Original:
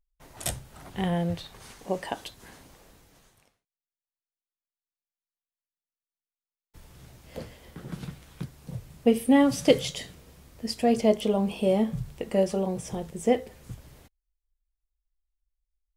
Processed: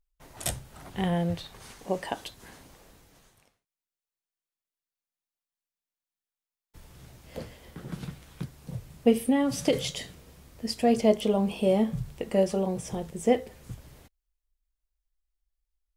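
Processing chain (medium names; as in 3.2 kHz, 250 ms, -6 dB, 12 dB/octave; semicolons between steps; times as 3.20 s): 9.16–9.73 s: compression, threshold -20 dBFS, peak gain reduction 7.5 dB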